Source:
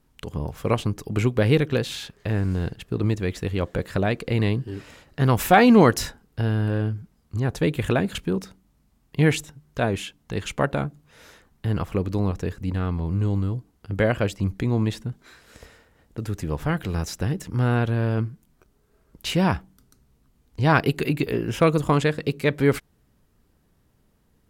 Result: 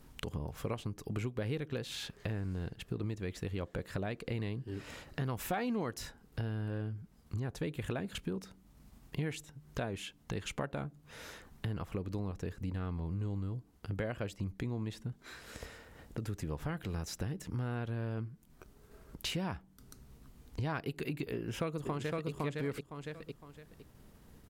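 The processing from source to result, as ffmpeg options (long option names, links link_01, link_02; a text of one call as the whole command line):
ffmpeg -i in.wav -filter_complex "[0:a]asplit=2[link_01][link_02];[link_02]afade=type=in:start_time=21.34:duration=0.01,afade=type=out:start_time=22.29:duration=0.01,aecho=0:1:510|1020|1530:0.749894|0.112484|0.0168726[link_03];[link_01][link_03]amix=inputs=2:normalize=0,acompressor=threshold=-37dB:ratio=4,agate=range=-33dB:threshold=-59dB:ratio=3:detection=peak,acompressor=mode=upward:threshold=-46dB:ratio=2.5" out.wav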